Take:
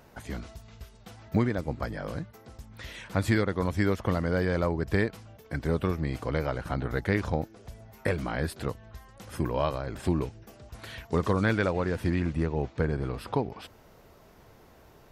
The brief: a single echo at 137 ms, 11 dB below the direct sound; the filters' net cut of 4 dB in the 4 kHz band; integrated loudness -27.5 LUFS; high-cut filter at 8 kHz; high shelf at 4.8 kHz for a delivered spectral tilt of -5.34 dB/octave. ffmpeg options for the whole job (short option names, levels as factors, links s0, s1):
-af "lowpass=8000,equalizer=f=4000:t=o:g=-3,highshelf=f=4800:g=-4,aecho=1:1:137:0.282,volume=1.33"